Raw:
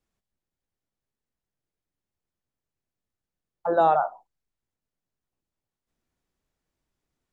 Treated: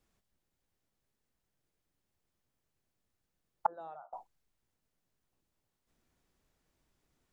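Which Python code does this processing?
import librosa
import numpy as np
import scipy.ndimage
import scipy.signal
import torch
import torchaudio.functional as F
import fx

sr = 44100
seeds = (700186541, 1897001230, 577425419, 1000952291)

y = fx.gate_flip(x, sr, shuts_db=-23.0, range_db=-32, at=(3.66, 4.13))
y = y * librosa.db_to_amplitude(4.5)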